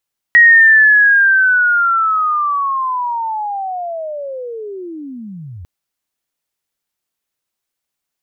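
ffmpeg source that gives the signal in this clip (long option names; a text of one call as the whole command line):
ffmpeg -f lavfi -i "aevalsrc='pow(10,(-3-25.5*t/5.3)/20)*sin(2*PI*(1900*t-1822*t*t/(2*5.3)))':duration=5.3:sample_rate=44100" out.wav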